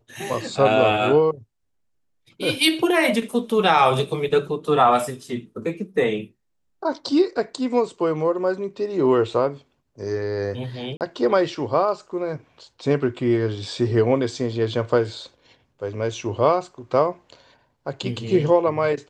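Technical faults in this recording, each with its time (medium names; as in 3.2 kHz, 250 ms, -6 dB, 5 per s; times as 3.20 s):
10.97–11.01 s: dropout 38 ms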